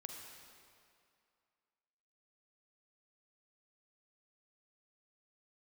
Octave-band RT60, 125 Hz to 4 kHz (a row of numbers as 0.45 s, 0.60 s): 2.1 s, 2.2 s, 2.3 s, 2.5 s, 2.2 s, 1.9 s